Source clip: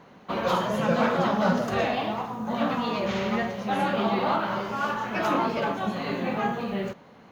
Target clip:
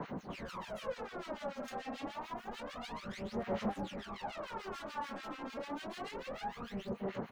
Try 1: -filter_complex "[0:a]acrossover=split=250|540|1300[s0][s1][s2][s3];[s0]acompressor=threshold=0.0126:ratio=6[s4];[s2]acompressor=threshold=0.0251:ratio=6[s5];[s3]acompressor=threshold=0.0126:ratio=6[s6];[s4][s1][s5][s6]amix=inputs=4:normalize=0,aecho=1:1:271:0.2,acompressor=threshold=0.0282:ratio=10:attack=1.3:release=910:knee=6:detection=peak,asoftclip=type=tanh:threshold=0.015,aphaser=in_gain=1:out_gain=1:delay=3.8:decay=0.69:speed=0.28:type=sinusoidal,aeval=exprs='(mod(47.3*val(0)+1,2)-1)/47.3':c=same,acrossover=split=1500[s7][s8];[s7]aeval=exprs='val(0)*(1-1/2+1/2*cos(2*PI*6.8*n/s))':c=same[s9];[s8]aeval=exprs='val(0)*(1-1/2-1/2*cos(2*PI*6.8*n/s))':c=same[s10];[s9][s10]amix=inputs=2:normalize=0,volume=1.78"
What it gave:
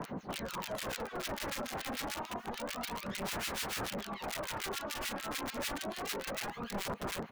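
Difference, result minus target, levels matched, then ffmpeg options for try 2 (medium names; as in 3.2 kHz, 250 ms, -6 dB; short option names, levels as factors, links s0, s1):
saturation: distortion -6 dB
-filter_complex "[0:a]acrossover=split=250|540|1300[s0][s1][s2][s3];[s0]acompressor=threshold=0.0126:ratio=6[s4];[s2]acompressor=threshold=0.0251:ratio=6[s5];[s3]acompressor=threshold=0.0126:ratio=6[s6];[s4][s1][s5][s6]amix=inputs=4:normalize=0,aecho=1:1:271:0.2,acompressor=threshold=0.0282:ratio=10:attack=1.3:release=910:knee=6:detection=peak,asoftclip=type=tanh:threshold=0.00631,aphaser=in_gain=1:out_gain=1:delay=3.8:decay=0.69:speed=0.28:type=sinusoidal,aeval=exprs='(mod(47.3*val(0)+1,2)-1)/47.3':c=same,acrossover=split=1500[s7][s8];[s7]aeval=exprs='val(0)*(1-1/2+1/2*cos(2*PI*6.8*n/s))':c=same[s9];[s8]aeval=exprs='val(0)*(1-1/2-1/2*cos(2*PI*6.8*n/s))':c=same[s10];[s9][s10]amix=inputs=2:normalize=0,volume=1.78"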